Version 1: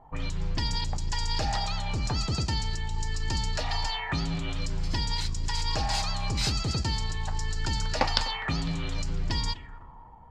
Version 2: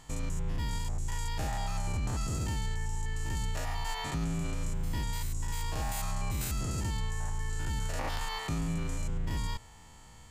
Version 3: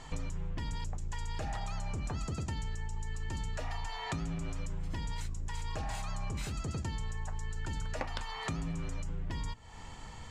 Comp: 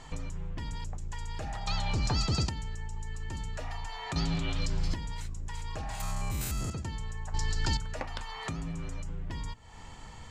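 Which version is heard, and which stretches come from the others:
3
1.67–2.49 s: from 1
4.16–4.94 s: from 1
6.00–6.70 s: from 2
7.34–7.77 s: from 1

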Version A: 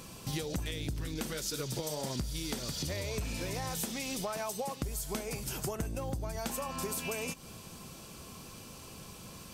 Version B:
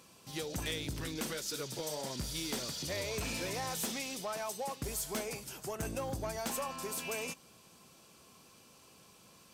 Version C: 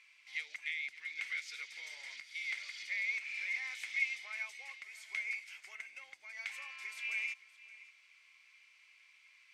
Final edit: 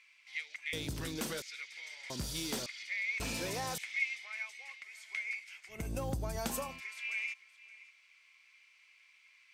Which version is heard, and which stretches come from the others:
C
0.73–1.42 s: from B
2.10–2.66 s: from B
3.20–3.78 s: from B
5.80–6.70 s: from A, crossfade 0.24 s

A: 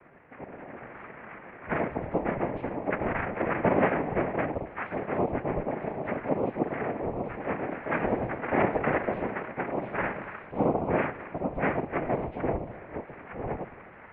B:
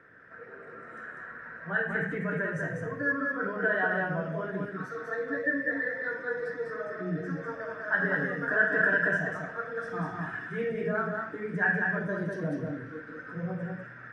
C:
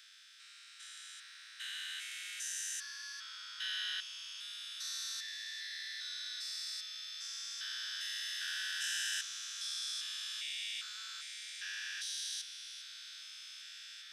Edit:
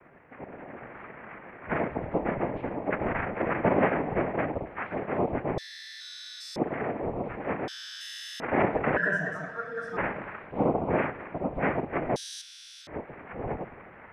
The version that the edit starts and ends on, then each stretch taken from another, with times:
A
5.58–6.56 s: from C
7.68–8.40 s: from C
8.97–9.97 s: from B
12.16–12.87 s: from C

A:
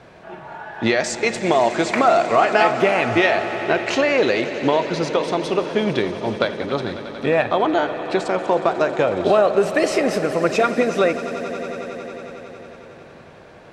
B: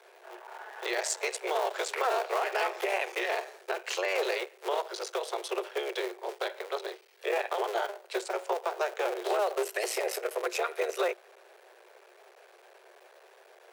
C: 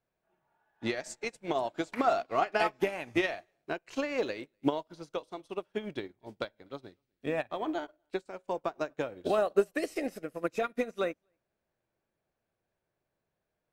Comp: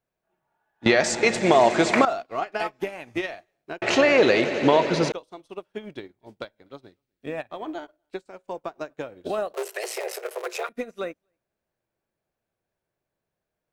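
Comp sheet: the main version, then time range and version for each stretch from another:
C
0.86–2.05 s: from A
3.82–5.12 s: from A
9.54–10.69 s: from B

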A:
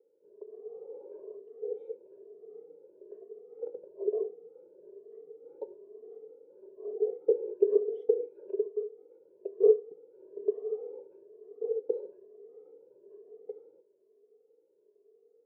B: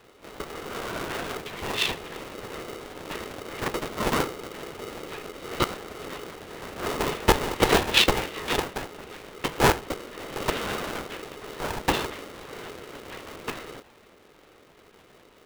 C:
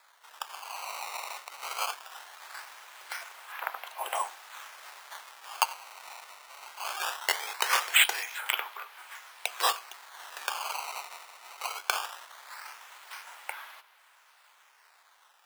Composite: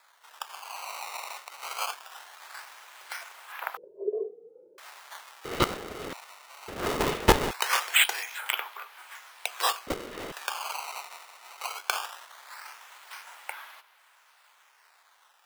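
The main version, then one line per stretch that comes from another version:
C
3.77–4.78 s: from A
5.45–6.13 s: from B
6.68–7.51 s: from B
9.87–10.32 s: from B

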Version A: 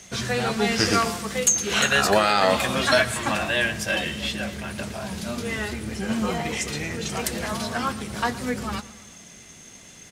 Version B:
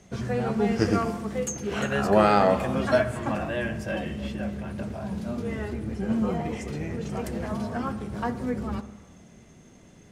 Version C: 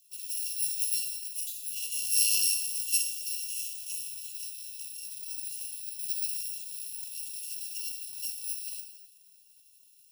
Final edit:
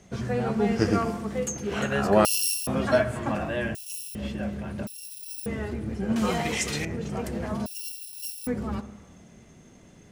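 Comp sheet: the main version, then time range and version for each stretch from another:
B
2.25–2.67 s: from C
3.75–4.15 s: from C
4.87–5.46 s: from C
6.16–6.85 s: from A
7.66–8.47 s: from C

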